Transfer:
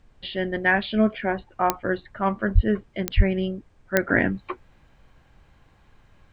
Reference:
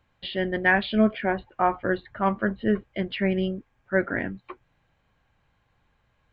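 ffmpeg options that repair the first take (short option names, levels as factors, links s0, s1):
-filter_complex "[0:a]adeclick=t=4,asplit=3[s0][s1][s2];[s0]afade=t=out:st=2.54:d=0.02[s3];[s1]highpass=f=140:w=0.5412,highpass=f=140:w=1.3066,afade=t=in:st=2.54:d=0.02,afade=t=out:st=2.66:d=0.02[s4];[s2]afade=t=in:st=2.66:d=0.02[s5];[s3][s4][s5]amix=inputs=3:normalize=0,asplit=3[s6][s7][s8];[s6]afade=t=out:st=3.16:d=0.02[s9];[s7]highpass=f=140:w=0.5412,highpass=f=140:w=1.3066,afade=t=in:st=3.16:d=0.02,afade=t=out:st=3.28:d=0.02[s10];[s8]afade=t=in:st=3.28:d=0.02[s11];[s9][s10][s11]amix=inputs=3:normalize=0,agate=range=0.0891:threshold=0.00355,asetnsamples=n=441:p=0,asendcmd='4.09 volume volume -8dB',volume=1"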